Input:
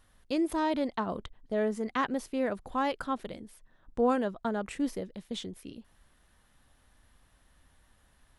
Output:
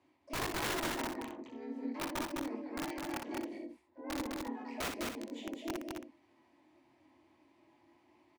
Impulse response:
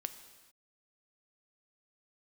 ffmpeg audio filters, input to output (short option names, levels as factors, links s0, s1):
-filter_complex "[0:a]aecho=1:1:4.1:0.42,areverse,acompressor=threshold=0.0126:ratio=16,areverse,asplit=3[s0][s1][s2];[s0]bandpass=f=300:t=q:w=8,volume=1[s3];[s1]bandpass=f=870:t=q:w=8,volume=0.501[s4];[s2]bandpass=f=2240:t=q:w=8,volume=0.355[s5];[s3][s4][s5]amix=inputs=3:normalize=0,flanger=delay=19.5:depth=4.1:speed=0.36,asplit=3[s6][s7][s8];[s7]asetrate=37084,aresample=44100,atempo=1.18921,volume=0.794[s9];[s8]asetrate=88200,aresample=44100,atempo=0.5,volume=0.398[s10];[s6][s9][s10]amix=inputs=3:normalize=0,afreqshift=54,aeval=exprs='(mod(150*val(0)+1,2)-1)/150':c=same,asplit=2[s11][s12];[s12]aecho=0:1:58.31|207|271.1:0.501|0.708|0.316[s13];[s11][s13]amix=inputs=2:normalize=0,volume=3.98"